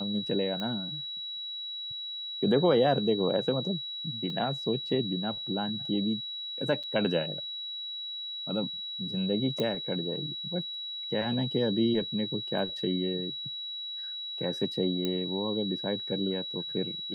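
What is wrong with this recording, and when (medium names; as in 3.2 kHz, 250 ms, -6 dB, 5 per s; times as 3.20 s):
whine 3.9 kHz -35 dBFS
0.60 s: pop -22 dBFS
4.30 s: dropout 2.2 ms
6.83–6.84 s: dropout 6.1 ms
9.60 s: pop -18 dBFS
15.05 s: pop -17 dBFS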